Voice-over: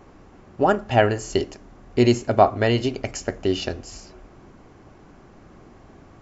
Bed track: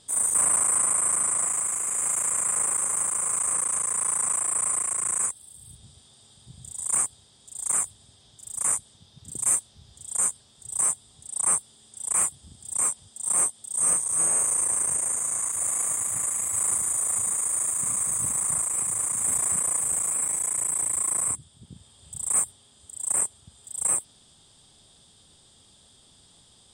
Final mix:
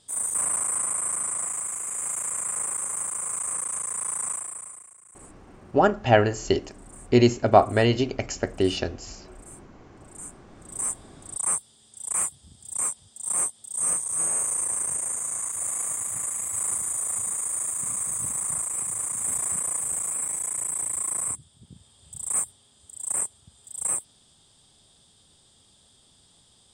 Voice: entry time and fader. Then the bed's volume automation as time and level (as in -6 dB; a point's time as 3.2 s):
5.15 s, -0.5 dB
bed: 4.3 s -4 dB
5.01 s -25.5 dB
9.77 s -25.5 dB
10.98 s -2.5 dB